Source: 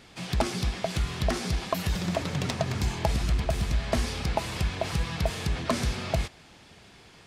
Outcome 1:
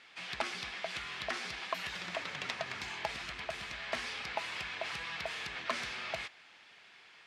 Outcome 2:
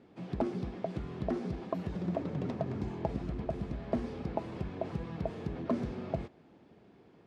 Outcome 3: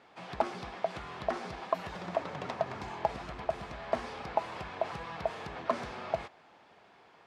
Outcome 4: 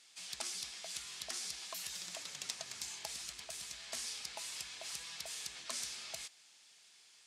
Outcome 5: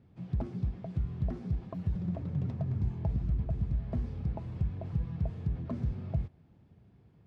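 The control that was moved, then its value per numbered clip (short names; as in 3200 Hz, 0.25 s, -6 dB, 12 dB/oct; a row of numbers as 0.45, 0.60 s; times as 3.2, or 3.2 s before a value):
band-pass, frequency: 2100, 310, 850, 7900, 110 Hz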